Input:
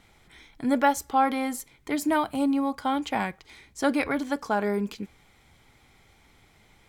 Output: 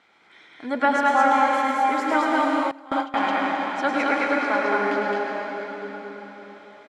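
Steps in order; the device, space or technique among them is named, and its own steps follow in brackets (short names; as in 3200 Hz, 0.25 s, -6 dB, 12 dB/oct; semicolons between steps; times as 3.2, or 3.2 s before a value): station announcement (BPF 360–4200 Hz; bell 1400 Hz +5 dB 0.55 oct; loudspeakers at several distances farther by 36 m -6 dB, 74 m -2 dB; reverb RT60 4.8 s, pre-delay 93 ms, DRR -1.5 dB); 2.71–3.15 gate with hold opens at -11 dBFS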